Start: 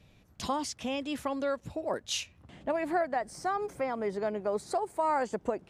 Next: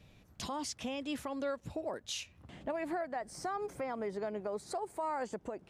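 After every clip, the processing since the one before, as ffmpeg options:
-af "alimiter=level_in=1.68:limit=0.0631:level=0:latency=1:release=271,volume=0.596"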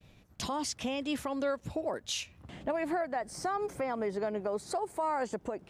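-af "agate=range=0.0224:threshold=0.00158:ratio=3:detection=peak,volume=1.68"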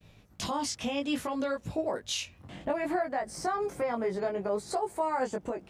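-af "flanger=delay=18.5:depth=3:speed=0.61,volume=1.78"

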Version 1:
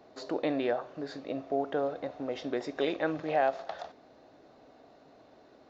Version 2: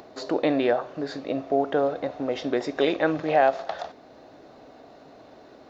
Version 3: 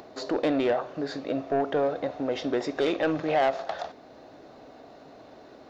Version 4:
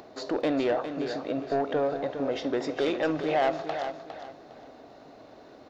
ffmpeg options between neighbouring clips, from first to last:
-af "acompressor=mode=upward:threshold=0.00251:ratio=2.5,volume=2.37"
-af "asoftclip=type=tanh:threshold=0.133"
-af "aecho=1:1:407|814|1221:0.355|0.0958|0.0259,volume=0.841"

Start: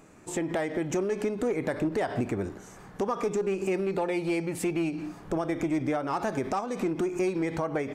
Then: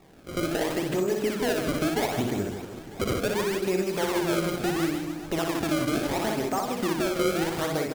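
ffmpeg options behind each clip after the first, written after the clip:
-filter_complex "[0:a]acrusher=samples=28:mix=1:aa=0.000001:lfo=1:lforange=44.8:lforate=0.73,asplit=2[s0][s1];[s1]aecho=0:1:60|156|309.6|555.4|948.6:0.631|0.398|0.251|0.158|0.1[s2];[s0][s2]amix=inputs=2:normalize=0"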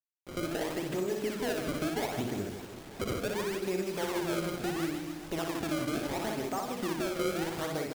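-af "acrusher=bits=6:mix=0:aa=0.000001,volume=0.473"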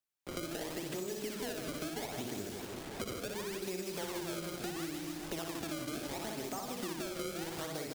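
-filter_complex "[0:a]acrossover=split=220|3300[s0][s1][s2];[s0]acompressor=threshold=0.002:ratio=4[s3];[s1]acompressor=threshold=0.00562:ratio=4[s4];[s2]acompressor=threshold=0.00447:ratio=4[s5];[s3][s4][s5]amix=inputs=3:normalize=0,volume=1.58"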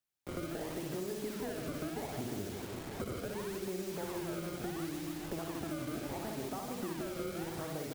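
-filter_complex "[0:a]equalizer=f=90:t=o:w=1.9:g=5.5,acrossover=split=1700[s0][s1];[s1]aeval=exprs='(mod(158*val(0)+1,2)-1)/158':c=same[s2];[s0][s2]amix=inputs=2:normalize=0"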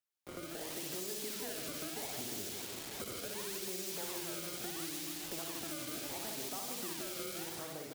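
-filter_complex "[0:a]acrossover=split=2700[s0][s1];[s0]lowshelf=f=210:g=-9.5[s2];[s1]dynaudnorm=f=120:g=9:m=3.76[s3];[s2][s3]amix=inputs=2:normalize=0,volume=0.668"

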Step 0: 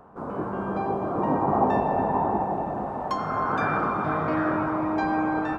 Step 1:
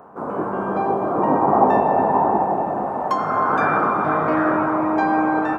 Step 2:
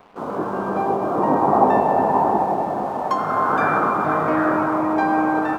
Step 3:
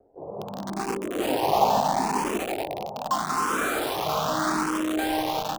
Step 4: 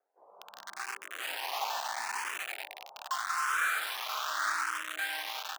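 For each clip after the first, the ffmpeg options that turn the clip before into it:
-af "highpass=f=310:p=1,equalizer=f=4300:t=o:w=1.8:g=-8,volume=2.66"
-af "aeval=exprs='sgn(val(0))*max(abs(val(0))-0.00422,0)':c=same"
-filter_complex "[0:a]acrossover=split=210|780[s0][s1][s2];[s2]acrusher=bits=3:mix=0:aa=0.000001[s3];[s0][s1][s3]amix=inputs=3:normalize=0,asplit=2[s4][s5];[s5]afreqshift=0.8[s6];[s4][s6]amix=inputs=2:normalize=1,volume=0.631"
-af "highpass=f=1600:t=q:w=2.1,volume=0.531"

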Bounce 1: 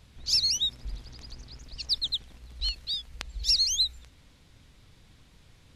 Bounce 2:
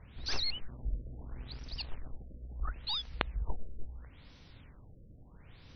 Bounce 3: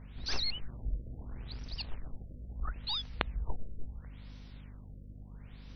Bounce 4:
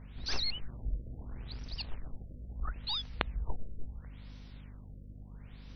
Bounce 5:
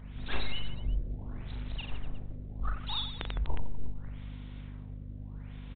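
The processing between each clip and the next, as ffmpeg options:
-filter_complex "[0:a]aeval=exprs='0.316*(cos(1*acos(clip(val(0)/0.316,-1,1)))-cos(1*PI/2))+0.112*(cos(3*acos(clip(val(0)/0.316,-1,1)))-cos(3*PI/2))+0.0141*(cos(4*acos(clip(val(0)/0.316,-1,1)))-cos(4*PI/2))+0.0178*(cos(7*acos(clip(val(0)/0.316,-1,1)))-cos(7*PI/2))+0.00562*(cos(8*acos(clip(val(0)/0.316,-1,1)))-cos(8*PI/2))':c=same,acrossover=split=3400[s0][s1];[s1]acompressor=threshold=0.00447:ratio=4:attack=1:release=60[s2];[s0][s2]amix=inputs=2:normalize=0,afftfilt=real='re*lt(b*sr/1024,630*pow(6300/630,0.5+0.5*sin(2*PI*0.74*pts/sr)))':imag='im*lt(b*sr/1024,630*pow(6300/630,0.5+0.5*sin(2*PI*0.74*pts/sr)))':win_size=1024:overlap=0.75,volume=2.82"
-af "aeval=exprs='val(0)+0.00398*(sin(2*PI*50*n/s)+sin(2*PI*2*50*n/s)/2+sin(2*PI*3*50*n/s)/3+sin(2*PI*4*50*n/s)/4+sin(2*PI*5*50*n/s)/5)':c=same"
-af anull
-af "aecho=1:1:40|92|159.6|247.5|361.7:0.631|0.398|0.251|0.158|0.1,volume=1.26" -ar 8000 -c:a adpcm_g726 -b:a 32k

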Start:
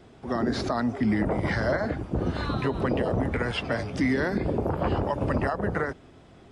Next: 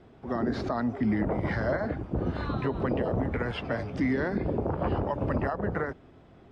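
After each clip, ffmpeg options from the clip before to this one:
-af "aemphasis=mode=reproduction:type=75fm,volume=0.708"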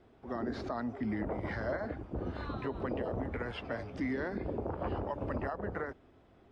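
-af "equalizer=f=150:t=o:w=0.79:g=-6.5,volume=0.473"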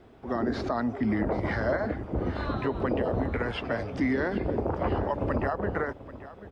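-af "aecho=1:1:786:0.158,volume=2.51"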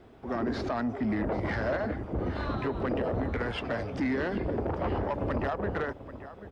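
-af "asoftclip=type=tanh:threshold=0.0708"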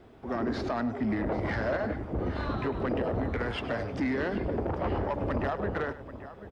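-af "aecho=1:1:102:0.188"

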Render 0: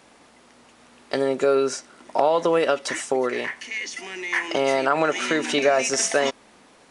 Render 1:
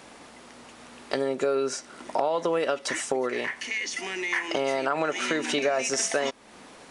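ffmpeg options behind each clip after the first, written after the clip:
-af "acompressor=threshold=0.0158:ratio=2,volume=1.78"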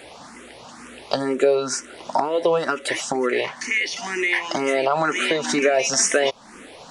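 -filter_complex "[0:a]asplit=2[s0][s1];[s1]afreqshift=2.1[s2];[s0][s2]amix=inputs=2:normalize=1,volume=2.82"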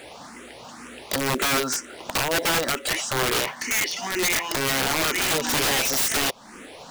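-af "aeval=exprs='(mod(7.08*val(0)+1,2)-1)/7.08':c=same,acrusher=bits=5:mode=log:mix=0:aa=0.000001"

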